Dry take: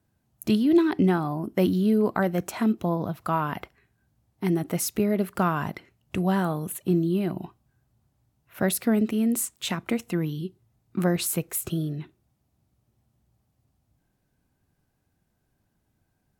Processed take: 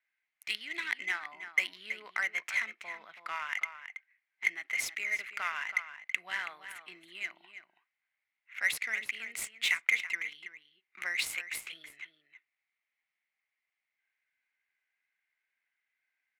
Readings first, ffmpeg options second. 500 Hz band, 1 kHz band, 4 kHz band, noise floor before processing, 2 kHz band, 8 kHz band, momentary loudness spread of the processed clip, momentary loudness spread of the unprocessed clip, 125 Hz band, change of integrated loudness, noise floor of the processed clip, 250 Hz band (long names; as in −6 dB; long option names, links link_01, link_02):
−28.0 dB, −12.5 dB, −0.5 dB, −74 dBFS, +6.5 dB, −9.5 dB, 17 LU, 12 LU, below −40 dB, −8.0 dB, below −85 dBFS, below −35 dB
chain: -filter_complex "[0:a]highpass=frequency=2100:width_type=q:width=8.5,adynamicsmooth=sensitivity=5:basefreq=3100,asplit=2[link_01][link_02];[link_02]adelay=326.5,volume=-10dB,highshelf=frequency=4000:gain=-7.35[link_03];[link_01][link_03]amix=inputs=2:normalize=0,volume=-3.5dB"